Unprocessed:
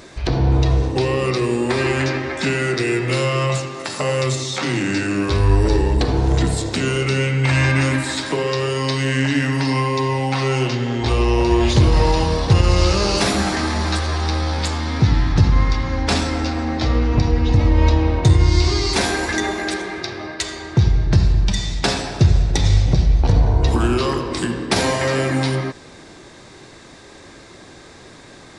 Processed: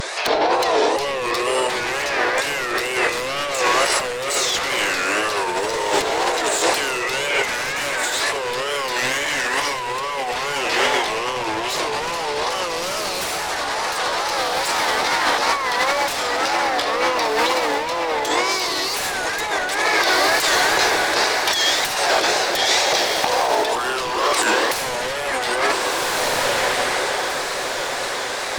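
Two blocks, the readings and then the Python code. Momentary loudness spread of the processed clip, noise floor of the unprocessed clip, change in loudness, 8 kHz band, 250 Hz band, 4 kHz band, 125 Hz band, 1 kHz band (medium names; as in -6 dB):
6 LU, -42 dBFS, -1.0 dB, +6.0 dB, -10.5 dB, +5.0 dB, -26.0 dB, +6.0 dB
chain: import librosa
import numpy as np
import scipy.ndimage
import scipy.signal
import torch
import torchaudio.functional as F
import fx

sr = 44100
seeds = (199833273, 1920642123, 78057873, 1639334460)

p1 = scipy.signal.sosfilt(scipy.signal.butter(4, 520.0, 'highpass', fs=sr, output='sos'), x)
p2 = fx.dynamic_eq(p1, sr, hz=4500.0, q=1.3, threshold_db=-37.0, ratio=4.0, max_db=-3)
p3 = fx.wow_flutter(p2, sr, seeds[0], rate_hz=2.1, depth_cents=140.0)
p4 = fx.fold_sine(p3, sr, drive_db=16, ceiling_db=-6.5)
p5 = p3 + F.gain(torch.from_numpy(p4), -5.0).numpy()
p6 = fx.echo_diffused(p5, sr, ms=1485, feedback_pct=48, wet_db=-8.5)
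p7 = fx.over_compress(p6, sr, threshold_db=-16.0, ratio=-0.5)
y = F.gain(torch.from_numpy(p7), -3.5).numpy()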